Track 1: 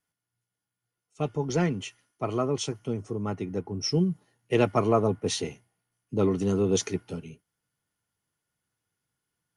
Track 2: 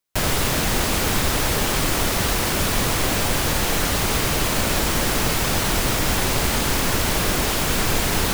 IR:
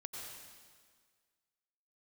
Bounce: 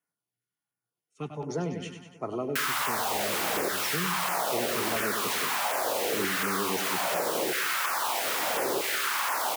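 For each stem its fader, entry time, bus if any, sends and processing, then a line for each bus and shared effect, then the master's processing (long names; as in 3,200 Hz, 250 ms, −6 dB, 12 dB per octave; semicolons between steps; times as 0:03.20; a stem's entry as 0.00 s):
−2.5 dB, 0.00 s, no send, echo send −8.5 dB, Bessel high-pass filter 180 Hz, order 8
−3.0 dB, 2.40 s, send −4.5 dB, no echo send, sub-octave generator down 2 octaves, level +3 dB; auto-filter high-pass saw down 0.78 Hz 380–1,700 Hz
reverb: on, RT60 1.7 s, pre-delay 83 ms
echo: repeating echo 98 ms, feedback 60%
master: parametric band 6,300 Hz −4 dB 1.7 octaves; auto-filter notch saw down 1.4 Hz 300–4,300 Hz; downward compressor 3 to 1, threshold −27 dBFS, peak gain reduction 7 dB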